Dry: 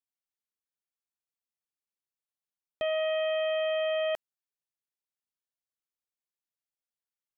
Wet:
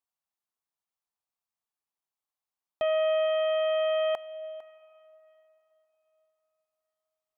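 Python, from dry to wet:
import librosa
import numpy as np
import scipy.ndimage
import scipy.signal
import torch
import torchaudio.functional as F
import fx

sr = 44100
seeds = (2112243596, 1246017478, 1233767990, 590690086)

y = fx.band_shelf(x, sr, hz=910.0, db=8.0, octaves=1.1)
y = y + 10.0 ** (-18.0 / 20.0) * np.pad(y, (int(453 * sr / 1000.0), 0))[:len(y)]
y = fx.rev_plate(y, sr, seeds[0], rt60_s=4.0, hf_ratio=0.9, predelay_ms=0, drr_db=19.5)
y = F.gain(torch.from_numpy(y), -1.0).numpy()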